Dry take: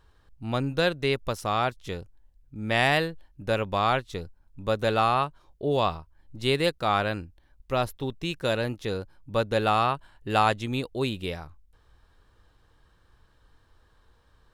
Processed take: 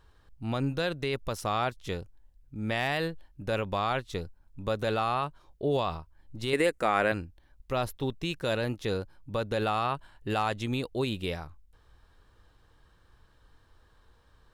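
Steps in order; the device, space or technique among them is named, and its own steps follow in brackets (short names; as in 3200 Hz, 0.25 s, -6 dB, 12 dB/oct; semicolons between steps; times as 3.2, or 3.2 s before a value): clipper into limiter (hard clip -11 dBFS, distortion -37 dB; limiter -18.5 dBFS, peak gain reduction 7.5 dB); 6.53–7.12 graphic EQ 125/250/500/2000/4000/8000 Hz -10/+6/+5/+9/-9/+10 dB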